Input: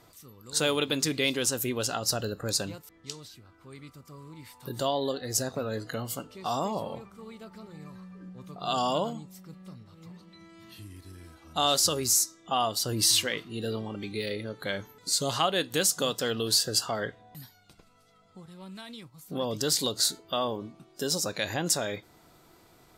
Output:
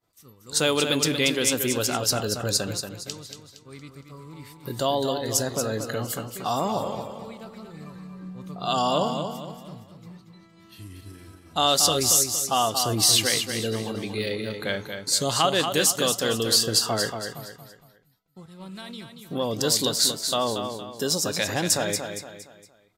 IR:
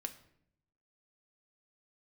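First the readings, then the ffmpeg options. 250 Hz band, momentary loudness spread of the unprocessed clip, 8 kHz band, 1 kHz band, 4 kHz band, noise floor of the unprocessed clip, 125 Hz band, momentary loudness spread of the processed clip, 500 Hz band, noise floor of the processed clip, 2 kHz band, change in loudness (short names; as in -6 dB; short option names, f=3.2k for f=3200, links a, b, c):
+5.0 dB, 22 LU, +5.0 dB, +5.0 dB, +5.0 dB, -59 dBFS, +5.0 dB, 21 LU, +5.0 dB, -55 dBFS, +5.0 dB, +4.5 dB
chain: -filter_complex "[0:a]agate=range=-33dB:threshold=-45dB:ratio=3:detection=peak,asplit=2[a][b];[b]aecho=0:1:232|464|696|928:0.447|0.17|0.0645|0.0245[c];[a][c]amix=inputs=2:normalize=0,volume=4dB"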